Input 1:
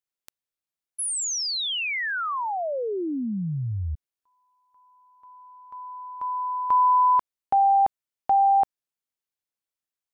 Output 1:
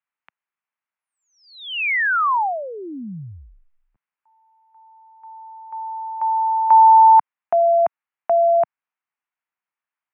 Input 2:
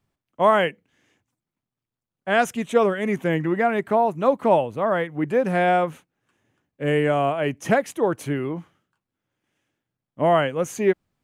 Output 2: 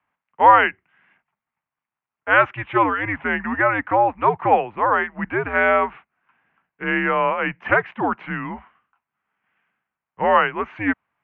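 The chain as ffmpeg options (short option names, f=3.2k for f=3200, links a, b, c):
-af "highpass=f=250:t=q:w=0.5412,highpass=f=250:t=q:w=1.307,lowpass=f=2.7k:t=q:w=0.5176,lowpass=f=2.7k:t=q:w=0.7071,lowpass=f=2.7k:t=q:w=1.932,afreqshift=-110,lowshelf=f=670:t=q:w=1.5:g=-9.5,volume=7.5dB"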